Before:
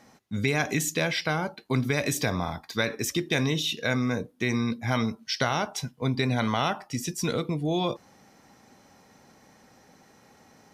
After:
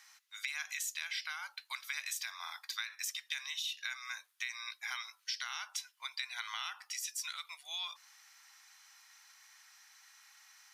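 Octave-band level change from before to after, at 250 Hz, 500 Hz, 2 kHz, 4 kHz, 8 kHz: under -40 dB, under -40 dB, -9.5 dB, -6.5 dB, -6.5 dB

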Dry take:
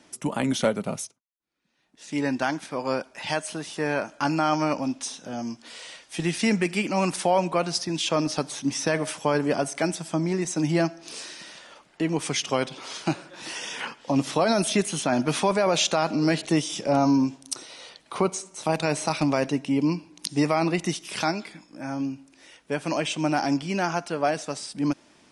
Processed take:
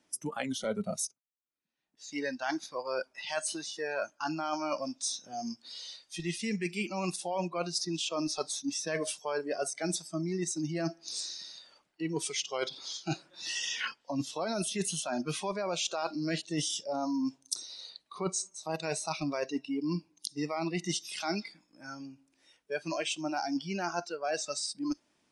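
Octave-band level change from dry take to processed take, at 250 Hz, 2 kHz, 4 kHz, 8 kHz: -10.0 dB, -8.0 dB, -5.0 dB, -3.5 dB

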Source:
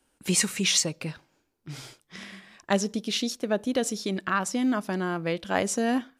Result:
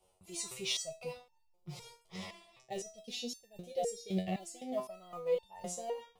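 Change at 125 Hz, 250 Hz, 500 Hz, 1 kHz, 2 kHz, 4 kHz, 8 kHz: -11.5 dB, -15.5 dB, -8.0 dB, -13.0 dB, -18.5 dB, -11.5 dB, -14.0 dB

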